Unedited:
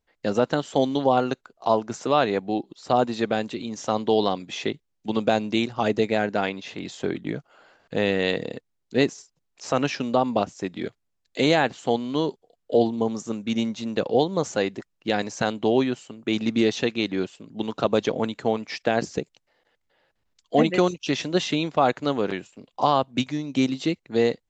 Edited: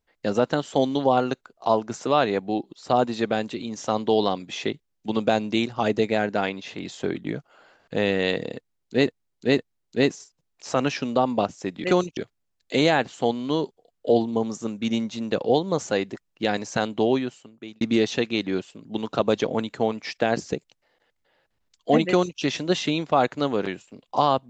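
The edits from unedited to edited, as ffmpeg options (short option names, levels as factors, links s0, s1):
-filter_complex "[0:a]asplit=6[s0][s1][s2][s3][s4][s5];[s0]atrim=end=9.072[s6];[s1]atrim=start=8.558:end=9.072[s7];[s2]atrim=start=8.558:end=10.822[s8];[s3]atrim=start=20.708:end=21.042[s9];[s4]atrim=start=10.818:end=16.46,asetpts=PTS-STARTPTS,afade=t=out:st=4.862:d=0.78[s10];[s5]atrim=start=16.46,asetpts=PTS-STARTPTS,afade=t=in:d=0.004:c=hsin[s11];[s6][s7]acrossfade=d=0.004:c1=hsin:c2=hsin[s12];[s12][s8]acrossfade=d=0.004:c1=hsin:c2=hsin[s13];[s13][s9]acrossfade=d=0.004:c1=hsin:c2=hsin[s14];[s10][s11]concat=n=2:v=0:a=1[s15];[s14][s15]acrossfade=d=0.004:c1=hsin:c2=hsin"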